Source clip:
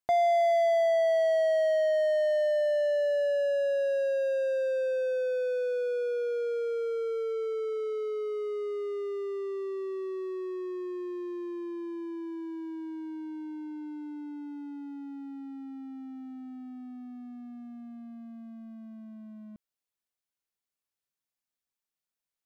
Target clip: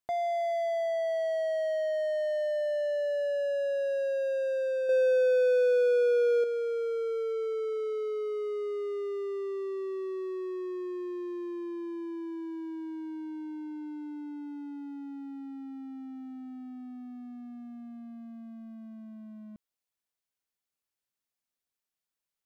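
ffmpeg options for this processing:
-filter_complex "[0:a]alimiter=level_in=1dB:limit=-24dB:level=0:latency=1,volume=-1dB,asettb=1/sr,asplit=3[a][b][c];[a]atrim=end=4.894[d];[b]atrim=start=4.89:end=6.44,asetpts=PTS-STARTPTS,afade=t=in:d=0.004:c=qsin,afade=t=out:st=1.546:d=0.004:c=qsin,acontrast=54[e];[c]atrim=start=6.436[f];[d][e]acrossfade=d=0.004:c1=hsin:c2=qsin[g];[g][f]acrossfade=d=0.004:c1=qsin:c2=hsin"

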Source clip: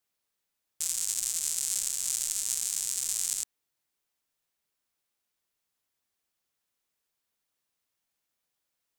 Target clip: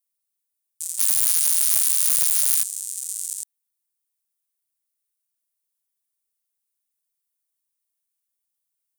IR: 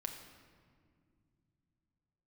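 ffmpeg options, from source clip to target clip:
-filter_complex "[0:a]equalizer=f=9.3k:w=4.7:g=7.5,asplit=3[a][b][c];[a]afade=t=out:st=0.98:d=0.02[d];[b]aeval=exprs='0.447*sin(PI/2*6.31*val(0)/0.447)':c=same,afade=t=in:st=0.98:d=0.02,afade=t=out:st=2.62:d=0.02[e];[c]afade=t=in:st=2.62:d=0.02[f];[d][e][f]amix=inputs=3:normalize=0,aemphasis=mode=production:type=75kf,volume=-14dB"

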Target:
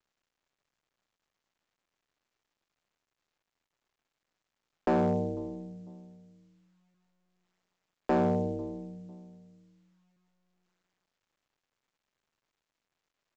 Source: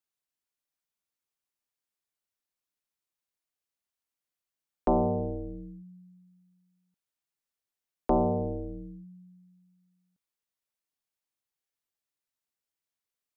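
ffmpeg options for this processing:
-filter_complex "[0:a]highpass=93,asplit=2[a][b];[b]adelay=498,lowpass=f=1k:p=1,volume=-21dB,asplit=2[c][d];[d]adelay=498,lowpass=f=1k:p=1,volume=0.33[e];[a][c][e]amix=inputs=3:normalize=0,adynamicequalizer=threshold=0.00708:dfrequency=180:dqfactor=4.4:tfrequency=180:tqfactor=4.4:attack=5:release=100:ratio=0.375:range=2:mode=boostabove:tftype=bell,lowpass=1.8k,asoftclip=type=hard:threshold=-21.5dB" -ar 16000 -c:a pcm_mulaw

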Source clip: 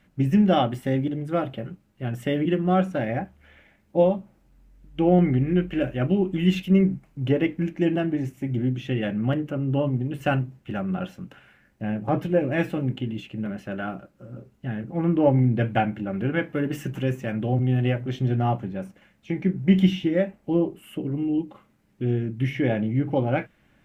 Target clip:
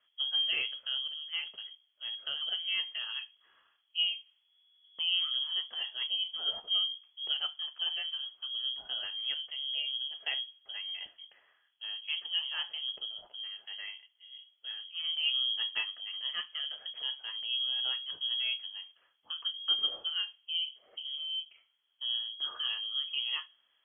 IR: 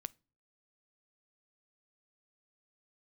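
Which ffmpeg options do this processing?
-filter_complex "[1:a]atrim=start_sample=2205[a];[0:a][a]afir=irnorm=-1:irlink=0,lowpass=f=2.9k:t=q:w=0.5098,lowpass=f=2.9k:t=q:w=0.6013,lowpass=f=2.9k:t=q:w=0.9,lowpass=f=2.9k:t=q:w=2.563,afreqshift=-3400,volume=-9dB"

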